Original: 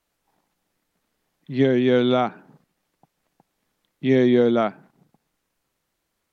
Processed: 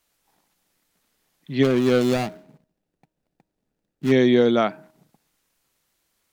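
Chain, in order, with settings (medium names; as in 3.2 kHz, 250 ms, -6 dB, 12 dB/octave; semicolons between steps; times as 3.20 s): 1.63–4.12 s: median filter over 41 samples; treble shelf 2.3 kHz +8 dB; de-hum 314.2 Hz, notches 3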